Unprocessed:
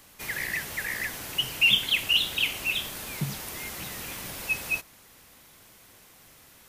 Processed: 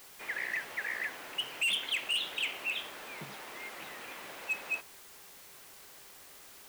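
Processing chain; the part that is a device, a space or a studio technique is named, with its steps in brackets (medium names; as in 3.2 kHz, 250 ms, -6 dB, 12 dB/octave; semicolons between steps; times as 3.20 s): aircraft radio (band-pass 400–2600 Hz; hard clipper -24.5 dBFS, distortion -12 dB; mains buzz 400 Hz, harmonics 39, -65 dBFS -3 dB/octave; white noise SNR 15 dB); trim -2.5 dB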